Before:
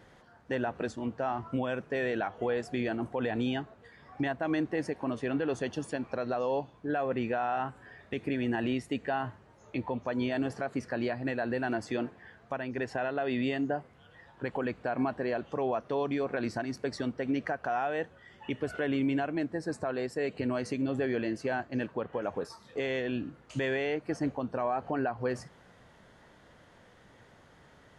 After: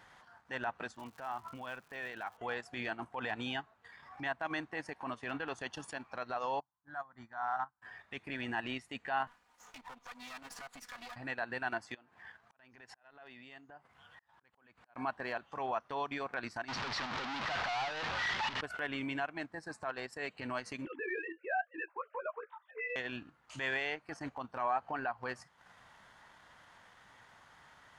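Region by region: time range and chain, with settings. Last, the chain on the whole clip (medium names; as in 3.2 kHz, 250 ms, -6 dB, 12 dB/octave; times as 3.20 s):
0.94–2.36 s: steep low-pass 7.6 kHz + crackle 240 per s -42 dBFS + compression 2.5:1, threshold -36 dBFS
6.60–7.82 s: static phaser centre 1.1 kHz, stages 4 + upward expansion 2.5:1, over -47 dBFS
9.27–11.16 s: comb filter that takes the minimum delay 4.1 ms + treble shelf 3.6 kHz +10.5 dB + compression 4:1, threshold -42 dBFS
11.94–14.96 s: compression 10:1, threshold -43 dBFS + slow attack 346 ms
16.68–18.61 s: one-bit comparator + low-pass 4.8 kHz 24 dB/octave
20.85–22.96 s: formants replaced by sine waves + doubling 16 ms -3.5 dB
whole clip: resonant low shelf 660 Hz -10 dB, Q 1.5; transient shaper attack -6 dB, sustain -10 dB; trim +1 dB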